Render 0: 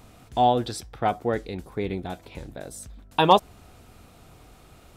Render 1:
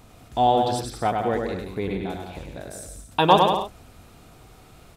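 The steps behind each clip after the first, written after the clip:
bouncing-ball delay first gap 100 ms, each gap 0.75×, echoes 5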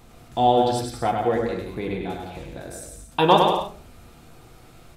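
hum removal 53.53 Hz, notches 2
on a send at −3.5 dB: convolution reverb RT60 0.35 s, pre-delay 6 ms
on the sum: level −1 dB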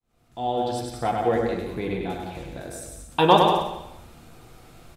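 fade in at the beginning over 1.35 s
repeating echo 187 ms, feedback 24%, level −13.5 dB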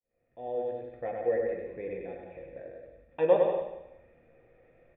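formant resonators in series e
level +2 dB

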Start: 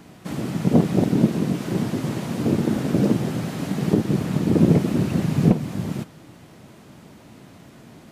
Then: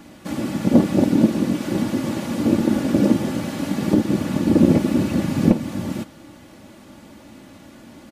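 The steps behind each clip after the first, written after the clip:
comb filter 3.5 ms, depth 57%
level +1.5 dB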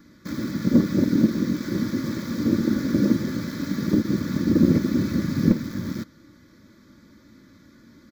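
in parallel at −4 dB: bit reduction 5 bits
on the sum: phaser with its sweep stopped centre 2,800 Hz, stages 6
level −6 dB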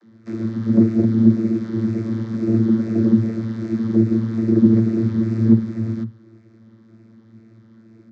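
tape wow and flutter 140 cents
channel vocoder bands 32, saw 112 Hz
level +5.5 dB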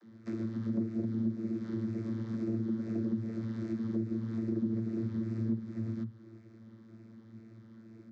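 downward compressor 3 to 1, threshold −29 dBFS, peak gain reduction 16 dB
level −5 dB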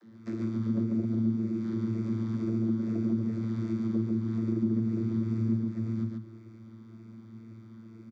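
single-tap delay 142 ms −3 dB
level +2 dB

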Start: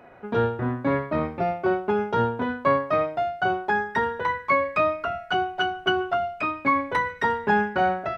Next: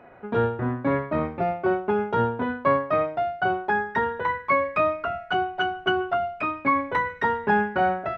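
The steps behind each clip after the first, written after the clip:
bass and treble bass 0 dB, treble −11 dB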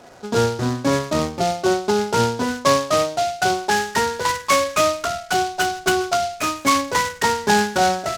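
short delay modulated by noise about 4,200 Hz, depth 0.055 ms
level +4.5 dB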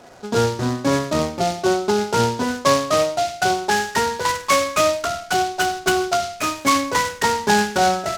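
convolution reverb RT60 0.40 s, pre-delay 40 ms, DRR 13.5 dB

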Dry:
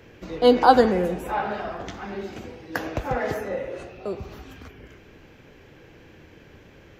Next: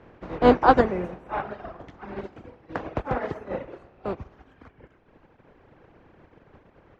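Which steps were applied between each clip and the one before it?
compressing power law on the bin magnitudes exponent 0.46
reverb reduction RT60 1.9 s
low-pass filter 1,100 Hz 12 dB per octave
level +2 dB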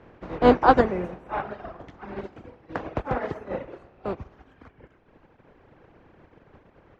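no processing that can be heard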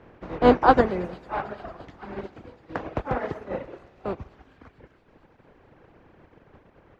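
delay with a high-pass on its return 224 ms, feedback 81%, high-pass 3,800 Hz, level −14.5 dB

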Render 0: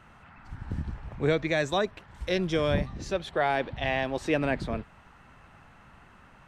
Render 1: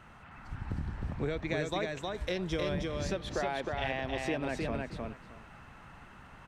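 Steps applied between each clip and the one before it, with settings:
downward compressor, threshold −31 dBFS, peak gain reduction 11 dB
repeating echo 312 ms, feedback 17%, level −3 dB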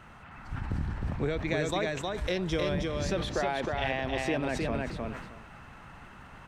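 level that may fall only so fast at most 54 dB per second
level +3 dB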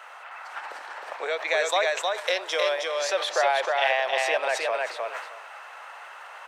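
Butterworth high-pass 530 Hz 36 dB per octave
level +9 dB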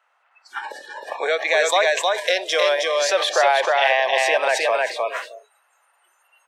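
noise reduction from a noise print of the clip's start 29 dB
in parallel at −2.5 dB: brickwall limiter −20 dBFS, peak gain reduction 10.5 dB
on the sum: level +3 dB

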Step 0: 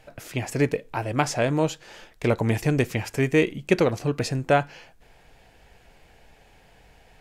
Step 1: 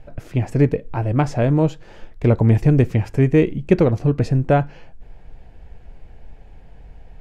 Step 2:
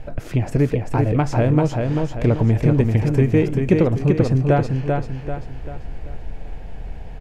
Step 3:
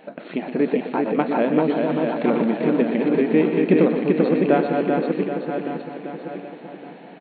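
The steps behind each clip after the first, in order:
spectral tilt −3.5 dB per octave
downward compressor 2 to 1, threshold −30 dBFS, peak gain reduction 12 dB; on a send: repeating echo 390 ms, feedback 42%, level −4 dB; on the sum: level +8 dB
feedback delay that plays each chunk backwards 582 ms, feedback 49%, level −5 dB; linear-phase brick-wall band-pass 170–4,400 Hz; single-tap delay 122 ms −10 dB

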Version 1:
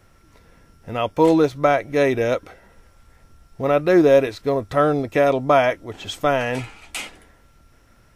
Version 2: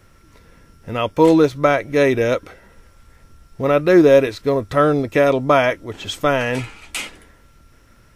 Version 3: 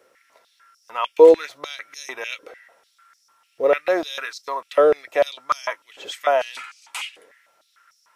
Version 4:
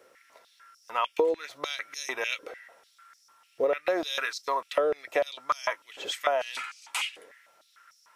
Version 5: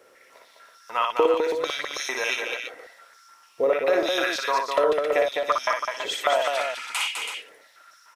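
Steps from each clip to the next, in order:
parametric band 740 Hz −6 dB 0.42 octaves; level +3.5 dB
high-pass on a step sequencer 6.7 Hz 480–5,400 Hz; level −6.5 dB
downward compressor 12 to 1, threshold −22 dBFS, peak gain reduction 16.5 dB
multi-tap delay 59/205/271/328 ms −4/−4.5/−15.5/−7.5 dB; level +3 dB

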